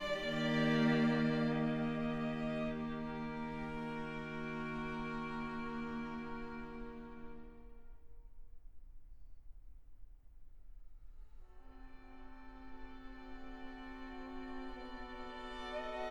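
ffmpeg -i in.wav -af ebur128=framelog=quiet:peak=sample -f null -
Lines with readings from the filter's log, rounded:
Integrated loudness:
  I:         -39.6 LUFS
  Threshold: -51.8 LUFS
Loudness range:
  LRA:        25.1 LU
  Threshold: -63.8 LUFS
  LRA low:   -61.2 LUFS
  LRA high:  -36.2 LUFS
Sample peak:
  Peak:      -22.2 dBFS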